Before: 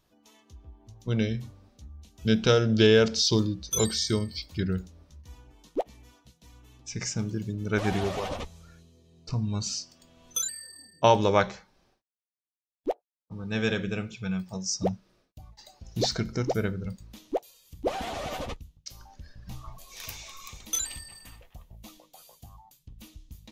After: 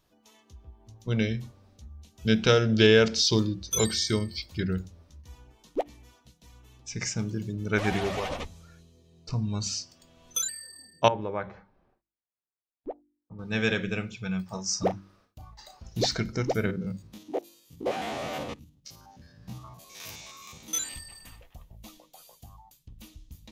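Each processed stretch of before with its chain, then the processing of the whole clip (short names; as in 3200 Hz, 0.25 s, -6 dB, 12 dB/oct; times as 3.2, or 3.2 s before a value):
11.08–13.39 LPF 1500 Hz + compressor 1.5:1, threshold -45 dBFS
14.46–15.89 bell 1200 Hz +9.5 dB 1 oct + doubler 35 ms -8.5 dB
16.66–20.94 stepped spectrum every 50 ms + HPF 170 Hz + low shelf 340 Hz +10 dB
whole clip: de-hum 48.88 Hz, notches 7; dynamic EQ 2100 Hz, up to +5 dB, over -45 dBFS, Q 1.5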